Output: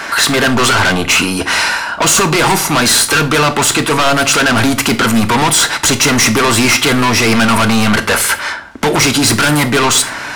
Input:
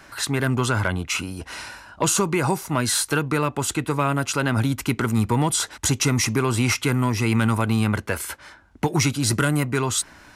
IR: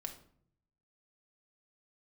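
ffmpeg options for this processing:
-filter_complex "[0:a]asplit=2[a][b];[b]highpass=f=720:p=1,volume=23dB,asoftclip=type=tanh:threshold=-9dB[c];[a][c]amix=inputs=2:normalize=0,lowpass=f=2.5k:p=1,volume=-6dB,aeval=exprs='0.355*sin(PI/2*2*val(0)/0.355)':c=same,asplit=2[d][e];[1:a]atrim=start_sample=2205,highshelf=f=3.1k:g=10[f];[e][f]afir=irnorm=-1:irlink=0,volume=1dB[g];[d][g]amix=inputs=2:normalize=0,volume=-5dB"

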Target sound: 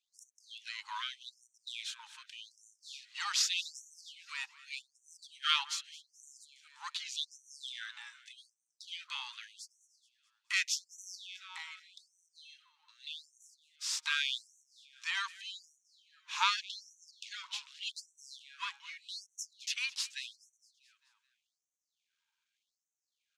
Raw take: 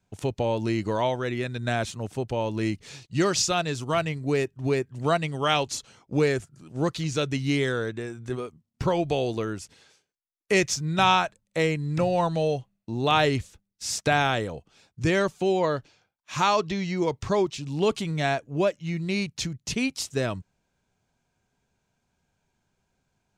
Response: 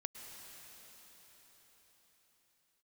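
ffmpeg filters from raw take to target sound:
-filter_complex "[0:a]aeval=exprs='if(lt(val(0),0),0.447*val(0),val(0))':c=same,lowpass=10k,equalizer=f=3.4k:t=o:w=1.1:g=8.5,asettb=1/sr,asplit=3[a][b][c];[a]atrim=end=11.154[d];[b]atrim=start=11.15:end=13.37,asetpts=PTS-STARTPTS,afade=t=in:d=0.004:c=qsin,afade=t=out:st=2.216:d=0.004:c=qsin,acompressor=threshold=-32dB:ratio=5[e];[c]atrim=start=13.366[f];[d][e]acrossfade=d=0.004:c1=hsin:c2=qsin[g];[g][f]acrossfade=d=0.004:c1=qsin:c2=hsin,aecho=1:1:214|428|642|856|1070:0.112|0.0628|0.0352|0.0197|0.011,afftfilt=real='re*gte(b*sr/1024,810*pow(5800/810,0.5+0.5*sin(2*PI*0.84*pts/sr)))':imag='im*gte(b*sr/1024,810*pow(5800/810,0.5+0.5*sin(2*PI*0.84*pts/sr)))':win_size=1024:overlap=0.75,volume=-5.5dB"

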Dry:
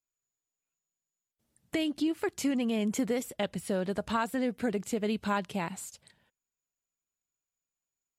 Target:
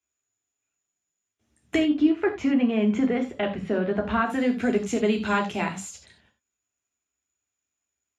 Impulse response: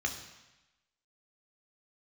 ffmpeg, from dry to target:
-filter_complex "[0:a]asetnsamples=n=441:p=0,asendcmd='1.79 lowpass f 2300;4.3 lowpass f 8300',lowpass=8.7k[a];[1:a]atrim=start_sample=2205,afade=t=out:st=0.15:d=0.01,atrim=end_sample=7056[b];[a][b]afir=irnorm=-1:irlink=0,volume=3.5dB"

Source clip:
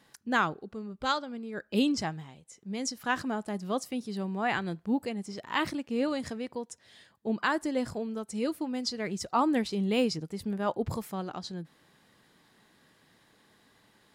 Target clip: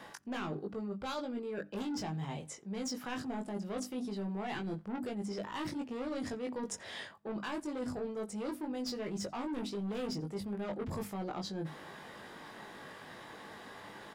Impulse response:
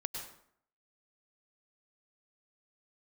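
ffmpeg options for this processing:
-filter_complex "[0:a]acrossover=split=460|3000[a][b][c];[b]acompressor=threshold=-50dB:ratio=2[d];[a][d][c]amix=inputs=3:normalize=0,equalizer=f=810:w=0.49:g=7.5,bandreject=f=50:t=h:w=6,bandreject=f=100:t=h:w=6,bandreject=f=150:t=h:w=6,bandreject=f=200:t=h:w=6,bandreject=f=250:t=h:w=6,bandreject=f=300:t=h:w=6,asoftclip=type=tanh:threshold=-30dB,highshelf=f=6.6k:g=-6,bandreject=f=4.2k:w=19,asplit=2[e][f];[f]adelay=20,volume=-4dB[g];[e][g]amix=inputs=2:normalize=0,asplit=2[h][i];[i]adelay=87.46,volume=-27dB,highshelf=f=4k:g=-1.97[j];[h][j]amix=inputs=2:normalize=0,areverse,acompressor=threshold=-46dB:ratio=6,areverse,volume=9dB"

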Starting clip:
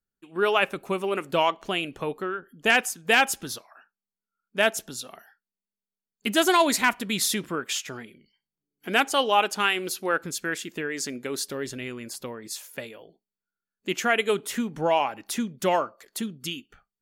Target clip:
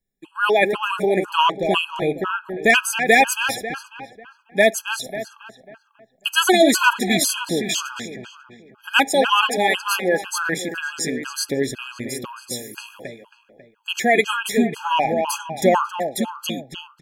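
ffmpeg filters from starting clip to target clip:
-filter_complex "[0:a]asplit=2[a][b];[b]adelay=272,lowpass=f=3.1k:p=1,volume=-7dB,asplit=2[c][d];[d]adelay=272,lowpass=f=3.1k:p=1,volume=0.47,asplit=2[e][f];[f]adelay=272,lowpass=f=3.1k:p=1,volume=0.47,asplit=2[g][h];[h]adelay=272,lowpass=f=3.1k:p=1,volume=0.47,asplit=2[i][j];[j]adelay=272,lowpass=f=3.1k:p=1,volume=0.47,asplit=2[k][l];[l]adelay=272,lowpass=f=3.1k:p=1,volume=0.47[m];[c][e][g][i][k][m]amix=inputs=6:normalize=0[n];[a][n]amix=inputs=2:normalize=0,afftfilt=real='re*gt(sin(2*PI*2*pts/sr)*(1-2*mod(floor(b*sr/1024/830),2)),0)':imag='im*gt(sin(2*PI*2*pts/sr)*(1-2*mod(floor(b*sr/1024/830),2)),0)':win_size=1024:overlap=0.75,volume=8.5dB"

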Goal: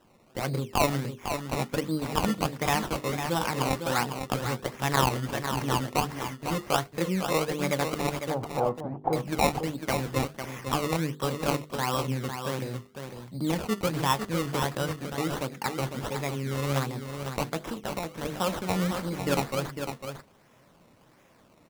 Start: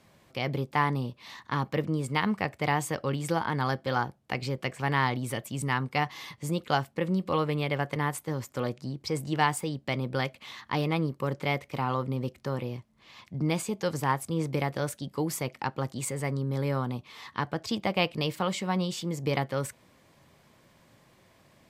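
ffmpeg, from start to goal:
-filter_complex "[0:a]highpass=110,bandreject=f=50:t=h:w=6,bandreject=f=100:t=h:w=6,bandreject=f=150:t=h:w=6,bandreject=f=200:t=h:w=6,bandreject=f=250:t=h:w=6,bandreject=f=300:t=h:w=6,bandreject=f=350:t=h:w=6,bandreject=f=400:t=h:w=6,bandreject=f=450:t=h:w=6,bandreject=f=500:t=h:w=6,asettb=1/sr,asplit=3[a][b][c];[a]atrim=end=17.614[d];[b]atrim=start=17.61:end=18.25,asetpts=PTS-STARTPTS,afade=t=in:d=0.004:c=qsin,afade=t=out:st=0.636:d=0.004:c=qsin,acompressor=threshold=-32dB:ratio=6[e];[c]atrim=start=18.246[f];[d][e]acrossfade=d=0.004:c1=hsin:c2=qsin[g];[g][f]acrossfade=d=0.004:c1=qsin:c2=hsin,flanger=delay=3.4:depth=6.8:regen=67:speed=0.52:shape=sinusoidal,acrusher=samples=19:mix=1:aa=0.000001:lfo=1:lforange=19:lforate=1.4,asettb=1/sr,asplit=3[h][i][j];[h]atrim=end=8.304[k];[i]atrim=start=8.3:end=9.13,asetpts=PTS-STARTPTS,afade=t=in:d=0.004:c=qsin,afade=t=out:st=0.826:d=0.004:c=qsin,lowpass=f=800:t=q:w=4.9[l];[j]atrim=start=9.126[m];[k][l]acrossfade=d=0.004:c1=hsin:c2=qsin[n];[n][m]acrossfade=d=0.004:c1=qsin:c2=hsin,aecho=1:1:502:0.422,volume=5.5dB"

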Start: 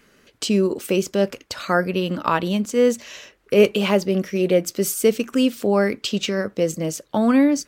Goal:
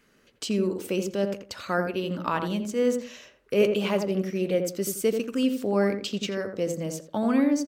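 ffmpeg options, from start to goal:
-filter_complex "[0:a]asplit=2[a][b];[b]adelay=85,lowpass=f=1.1k:p=1,volume=-4.5dB,asplit=2[c][d];[d]adelay=85,lowpass=f=1.1k:p=1,volume=0.26,asplit=2[e][f];[f]adelay=85,lowpass=f=1.1k:p=1,volume=0.26,asplit=2[g][h];[h]adelay=85,lowpass=f=1.1k:p=1,volume=0.26[i];[a][c][e][g][i]amix=inputs=5:normalize=0,volume=-7.5dB"

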